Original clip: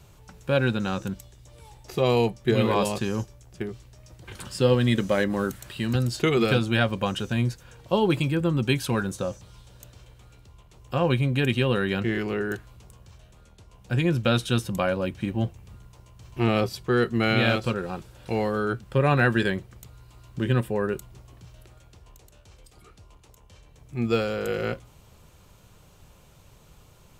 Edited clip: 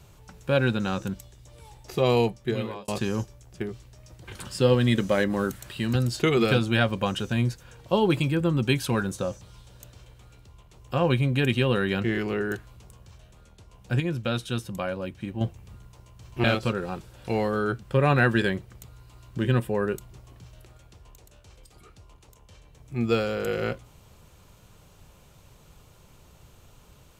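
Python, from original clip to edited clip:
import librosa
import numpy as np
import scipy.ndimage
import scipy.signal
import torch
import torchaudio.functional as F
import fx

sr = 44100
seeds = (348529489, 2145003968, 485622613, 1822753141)

y = fx.edit(x, sr, fx.fade_out_span(start_s=2.2, length_s=0.68),
    fx.clip_gain(start_s=14.0, length_s=1.41, db=-5.5),
    fx.cut(start_s=16.44, length_s=1.01), tone=tone)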